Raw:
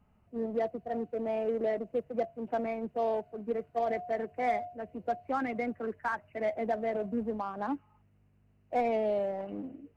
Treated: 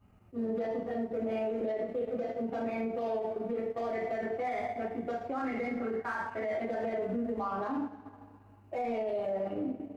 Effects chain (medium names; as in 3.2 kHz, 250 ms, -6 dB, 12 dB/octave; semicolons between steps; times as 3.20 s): two-slope reverb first 0.51 s, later 2.1 s, from -18 dB, DRR -9 dB; peak limiter -23 dBFS, peak gain reduction 15.5 dB; transient shaper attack -2 dB, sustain -7 dB; trim -3 dB